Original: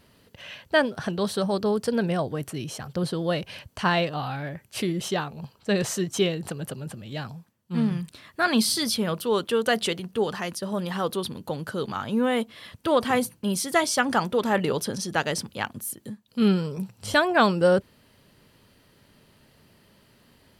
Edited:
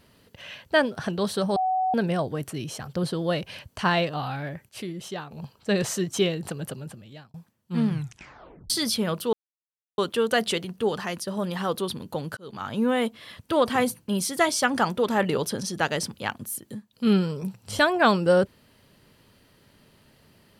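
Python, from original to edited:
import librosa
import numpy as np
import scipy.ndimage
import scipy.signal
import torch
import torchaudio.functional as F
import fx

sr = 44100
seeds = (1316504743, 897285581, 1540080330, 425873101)

y = fx.edit(x, sr, fx.bleep(start_s=1.56, length_s=0.38, hz=749.0, db=-21.0),
    fx.clip_gain(start_s=4.69, length_s=0.62, db=-7.5),
    fx.fade_out_span(start_s=6.69, length_s=0.65),
    fx.tape_stop(start_s=7.89, length_s=0.81),
    fx.insert_silence(at_s=9.33, length_s=0.65),
    fx.fade_in_span(start_s=11.72, length_s=0.36), tone=tone)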